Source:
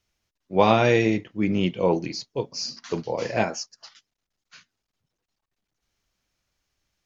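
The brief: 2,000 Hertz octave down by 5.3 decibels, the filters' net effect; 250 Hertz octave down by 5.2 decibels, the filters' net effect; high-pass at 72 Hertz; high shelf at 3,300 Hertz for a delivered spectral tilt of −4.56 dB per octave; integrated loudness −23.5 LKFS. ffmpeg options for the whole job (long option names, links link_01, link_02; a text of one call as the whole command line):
ffmpeg -i in.wav -af "highpass=72,equalizer=frequency=250:width_type=o:gain=-7.5,equalizer=frequency=2000:width_type=o:gain=-8.5,highshelf=frequency=3300:gain=4.5,volume=3dB" out.wav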